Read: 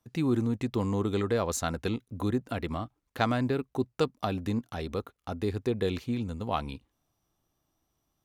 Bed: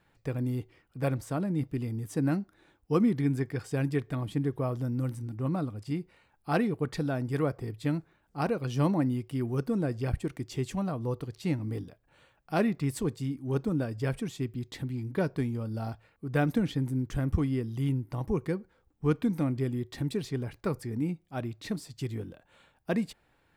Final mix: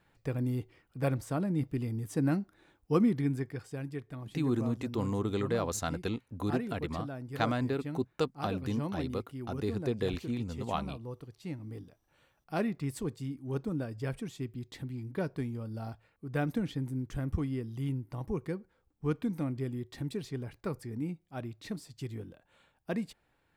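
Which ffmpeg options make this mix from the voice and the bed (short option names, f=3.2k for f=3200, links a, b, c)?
-filter_complex "[0:a]adelay=4200,volume=-3.5dB[a];[1:a]volume=4dB,afade=t=out:st=3.01:d=0.8:silence=0.354813,afade=t=in:st=11.52:d=1.03:silence=0.562341[b];[a][b]amix=inputs=2:normalize=0"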